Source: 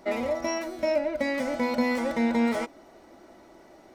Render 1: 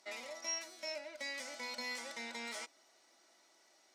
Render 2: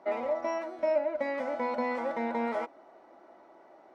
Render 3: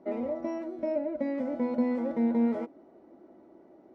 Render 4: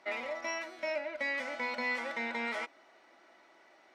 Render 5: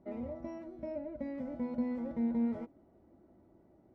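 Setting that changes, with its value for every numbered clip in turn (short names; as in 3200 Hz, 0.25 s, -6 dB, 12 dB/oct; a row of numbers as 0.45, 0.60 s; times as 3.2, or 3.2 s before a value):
band-pass, frequency: 6200, 860, 300, 2200, 100 Hz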